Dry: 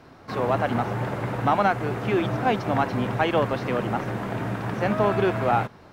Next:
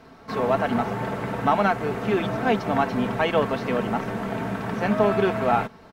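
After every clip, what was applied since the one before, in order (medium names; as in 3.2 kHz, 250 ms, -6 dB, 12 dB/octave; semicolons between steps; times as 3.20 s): comb 4.5 ms, depth 49%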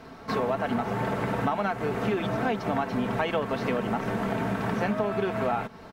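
compression, threshold -27 dBFS, peak gain reduction 12 dB; trim +3 dB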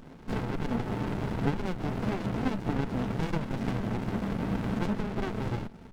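sliding maximum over 65 samples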